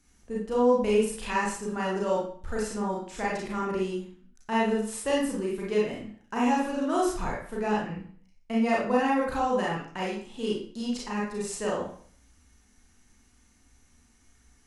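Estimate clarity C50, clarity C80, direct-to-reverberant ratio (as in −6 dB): 2.0 dB, 7.0 dB, −5.0 dB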